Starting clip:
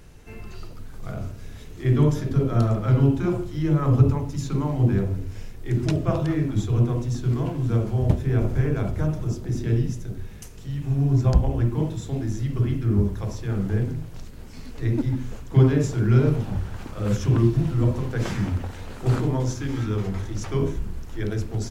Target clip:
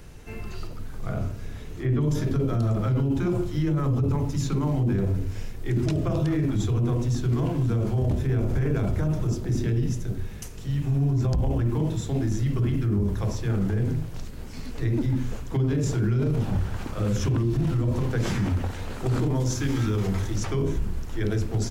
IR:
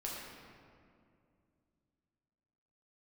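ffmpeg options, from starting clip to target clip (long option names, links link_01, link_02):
-filter_complex "[0:a]asettb=1/sr,asplit=3[link_01][link_02][link_03];[link_01]atrim=end=0.674[link_04];[link_02]atrim=start=0.67:end=2.01,asetpts=PTS-STARTPTS,afade=type=in:duration=0.004:curve=qsin,afade=type=out:start_time=1.336:duration=0.004:curve=qsin,acrossover=split=2600[link_05][link_06];[link_06]acompressor=threshold=-56dB:ratio=4:attack=1:release=60[link_07];[link_05][link_07]amix=inputs=2:normalize=0[link_08];[link_03]atrim=start=2.006[link_09];[link_04][link_08]acrossfade=duration=0.004:curve1=hsin:curve2=qsin[link_10];[link_10][link_09]acrossfade=duration=0.004:curve1=qsin:curve2=hsin,asettb=1/sr,asplit=3[link_11][link_12][link_13];[link_11]atrim=end=19.354[link_14];[link_12]atrim=start=19.35:end=20.38,asetpts=PTS-STARTPTS,afade=type=in:duration=0.004:curve=qsin,afade=type=out:start_time=1.026:duration=0.004:curve=qsin,highshelf=frequency=4700:gain=5.5[link_15];[link_13]atrim=start=20.376[link_16];[link_14][link_15]acrossfade=duration=0.004:curve1=hsin:curve2=qsin[link_17];[link_17][link_16]acrossfade=duration=0.004:curve1=qsin:curve2=hsin,acrossover=split=460|3000[link_18][link_19][link_20];[link_19]acompressor=threshold=-34dB:ratio=6[link_21];[link_18][link_21][link_20]amix=inputs=3:normalize=0,alimiter=limit=-20.5dB:level=0:latency=1:release=12,volume=3dB"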